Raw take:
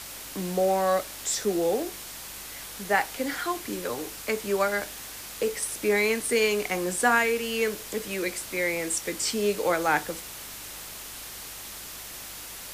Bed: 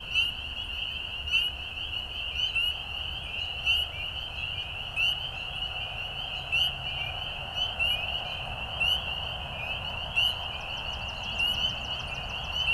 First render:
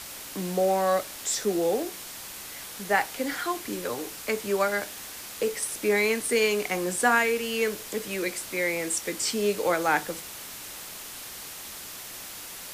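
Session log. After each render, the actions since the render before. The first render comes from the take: de-hum 50 Hz, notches 3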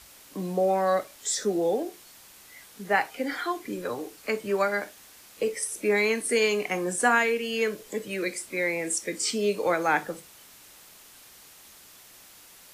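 noise print and reduce 11 dB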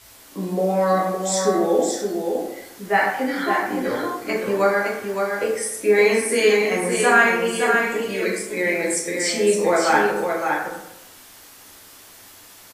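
delay 564 ms -5 dB; plate-style reverb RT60 0.88 s, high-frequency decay 0.5×, DRR -4.5 dB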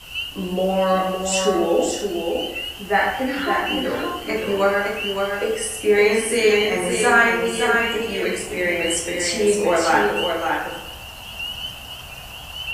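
add bed -2 dB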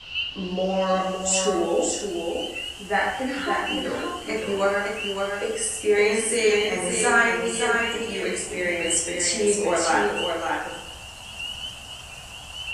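low-pass sweep 4.1 kHz -> 8.3 kHz, 0.31–1.34 s; flange 1.6 Hz, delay 9 ms, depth 3.4 ms, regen -67%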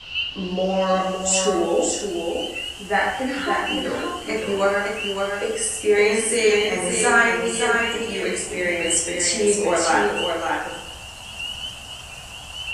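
trim +2.5 dB

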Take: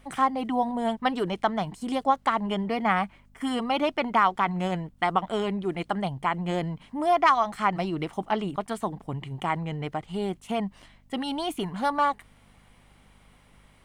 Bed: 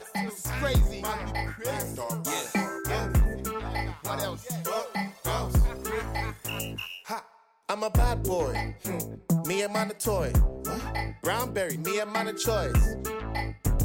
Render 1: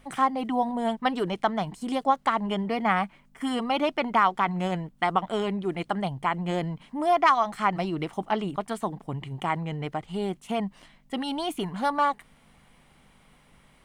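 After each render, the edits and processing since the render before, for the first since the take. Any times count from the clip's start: de-hum 50 Hz, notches 2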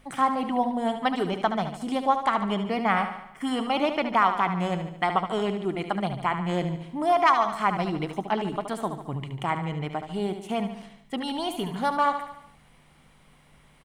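feedback delay 73 ms, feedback 54%, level -9 dB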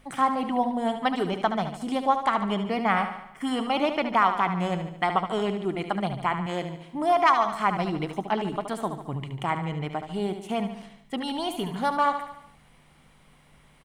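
6.46–6.95 s: bass shelf 250 Hz -10.5 dB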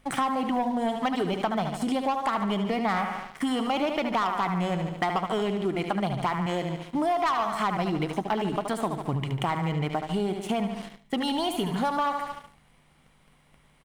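waveshaping leveller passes 2; compression 4:1, threshold -25 dBFS, peak gain reduction 10.5 dB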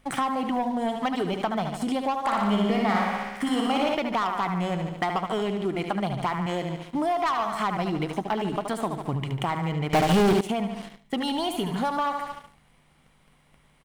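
2.19–3.95 s: flutter echo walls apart 10 m, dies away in 1.1 s; 9.93–10.41 s: waveshaping leveller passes 5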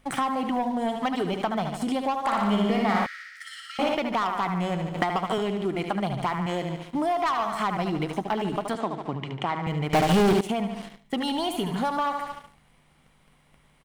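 3.06–3.79 s: rippled Chebyshev high-pass 1.3 kHz, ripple 9 dB; 4.94–5.38 s: three bands compressed up and down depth 100%; 8.75–9.67 s: three-band isolator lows -13 dB, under 160 Hz, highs -23 dB, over 6.3 kHz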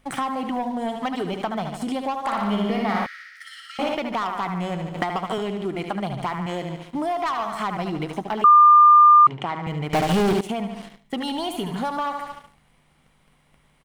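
2.33–3.69 s: peaking EQ 7.6 kHz -6 dB 0.36 oct; 8.44–9.27 s: bleep 1.2 kHz -8 dBFS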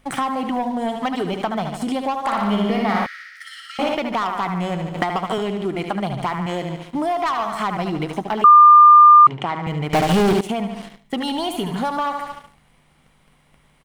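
trim +3.5 dB

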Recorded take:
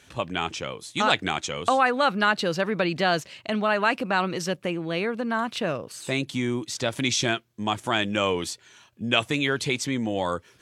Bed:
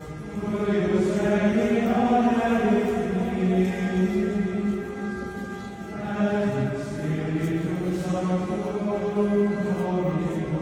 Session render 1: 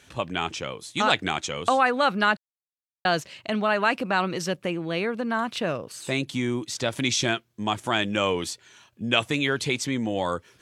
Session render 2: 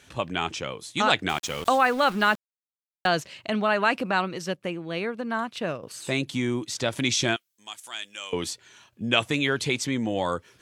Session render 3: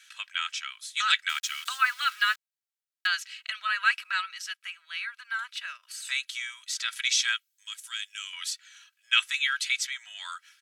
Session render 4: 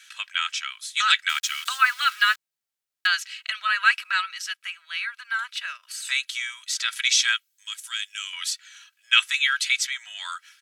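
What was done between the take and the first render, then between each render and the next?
2.37–3.05 s: mute
1.29–3.07 s: small samples zeroed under -35.5 dBFS; 4.11–5.83 s: upward expansion, over -40 dBFS; 7.36–8.33 s: differentiator
elliptic high-pass 1.4 kHz, stop band 80 dB; comb 3.1 ms, depth 56%
trim +5 dB; peak limiter -3 dBFS, peak gain reduction 2.5 dB

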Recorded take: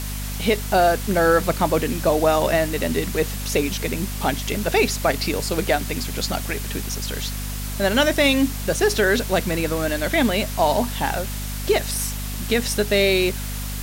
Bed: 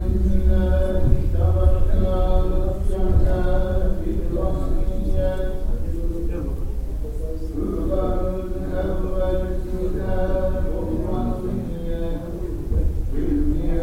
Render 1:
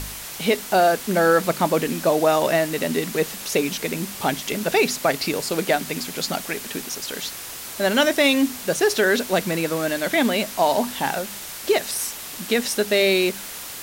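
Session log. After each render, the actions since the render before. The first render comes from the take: de-hum 50 Hz, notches 5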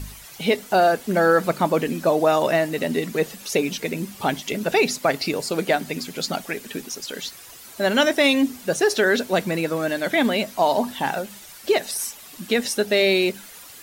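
noise reduction 11 dB, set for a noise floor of -35 dBFS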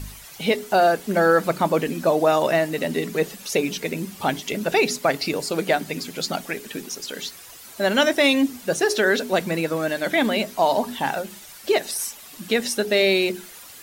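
hum notches 60/120/180/240/300/360/420 Hz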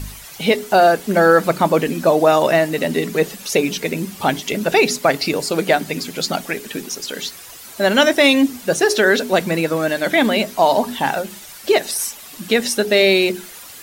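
trim +5 dB

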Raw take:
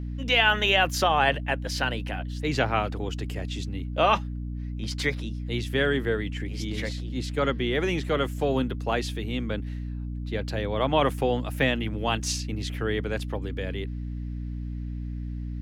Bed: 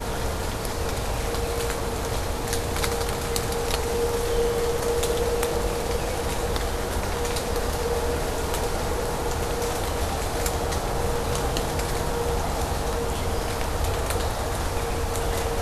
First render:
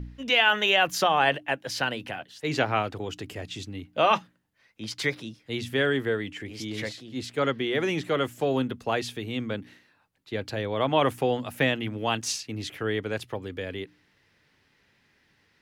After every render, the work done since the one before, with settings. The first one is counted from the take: de-hum 60 Hz, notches 5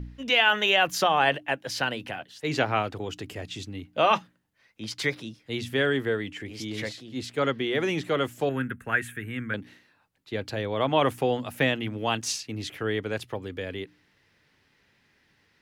8.49–9.54 s: FFT filter 160 Hz 0 dB, 730 Hz -11 dB, 1.1 kHz -4 dB, 1.6 kHz +13 dB, 4.9 kHz -23 dB, 8.4 kHz +3 dB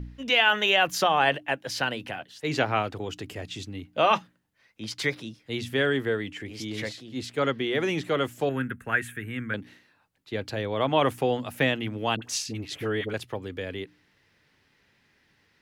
12.16–13.14 s: phase dispersion highs, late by 61 ms, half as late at 790 Hz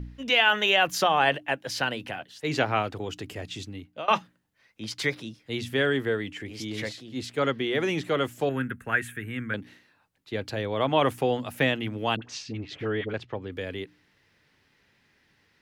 3.51–4.08 s: fade out equal-power, to -22.5 dB; 12.17–13.52 s: distance through air 160 m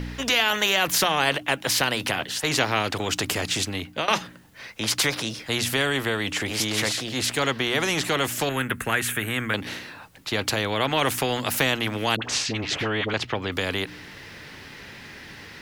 in parallel at +2 dB: compression, threshold -33 dBFS, peak gain reduction 16 dB; on the sum: spectrum-flattening compressor 2:1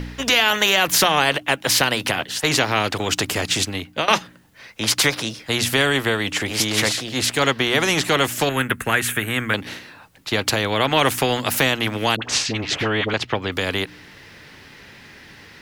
in parallel at +2 dB: peak limiter -12.5 dBFS, peak gain reduction 7.5 dB; on the sum: upward expansion 1.5:1, over -31 dBFS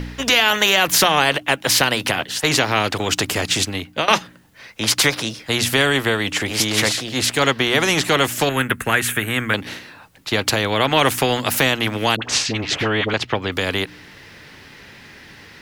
trim +1.5 dB; peak limiter -2 dBFS, peak gain reduction 1 dB

